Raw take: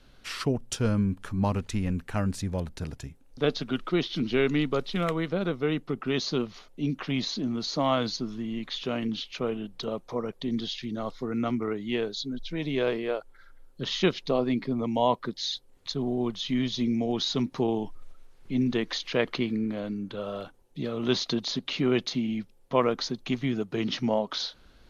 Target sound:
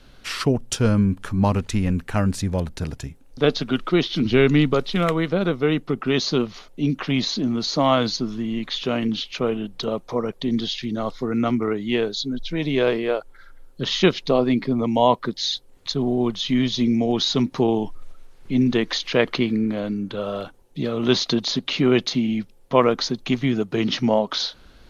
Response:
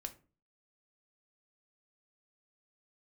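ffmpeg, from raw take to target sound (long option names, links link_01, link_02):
-filter_complex "[0:a]asettb=1/sr,asplit=3[link_01][link_02][link_03];[link_01]atrim=end=4.254[link_04];[link_02]atrim=start=4.25:end=4.74,asetpts=PTS-STARTPTS,afade=type=in:duration=0.004:curve=qsin,afade=type=out:start_time=0.486:duration=0.004:curve=qsin,equalizer=frequency=77:width=0.99:gain=13[link_05];[link_03]atrim=start=4.736[link_06];[link_04][link_05]acrossfade=duration=0.004:curve1=hsin:curve2=qsin[link_07];[link_07][link_06]acrossfade=duration=0.004:curve1=qsin:curve2=hsin,volume=7dB"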